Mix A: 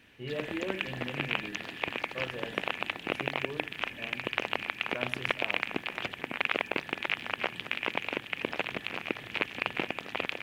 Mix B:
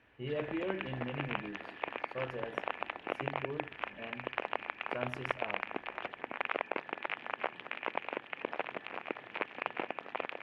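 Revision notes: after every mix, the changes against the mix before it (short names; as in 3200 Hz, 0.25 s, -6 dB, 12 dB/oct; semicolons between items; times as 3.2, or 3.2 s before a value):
background: add band-pass 870 Hz, Q 0.79; master: add LPF 2900 Hz 6 dB/oct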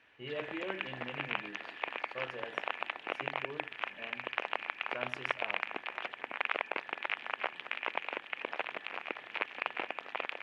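speech: add air absorption 79 m; master: add tilt +3 dB/oct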